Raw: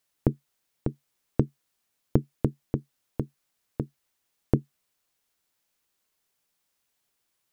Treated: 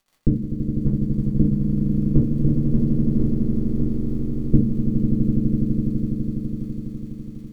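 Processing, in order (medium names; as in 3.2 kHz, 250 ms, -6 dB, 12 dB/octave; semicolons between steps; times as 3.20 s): boxcar filter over 59 samples; peaking EQ 210 Hz +10.5 dB 0.24 oct; in parallel at -9 dB: crossover distortion -34 dBFS; on the sum: rotary cabinet horn 0.9 Hz; crackle 44 per s -45 dBFS; echo with a slow build-up 83 ms, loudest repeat 8, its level -7 dB; reverberation RT60 0.30 s, pre-delay 4 ms, DRR -2.5 dB; trim -3.5 dB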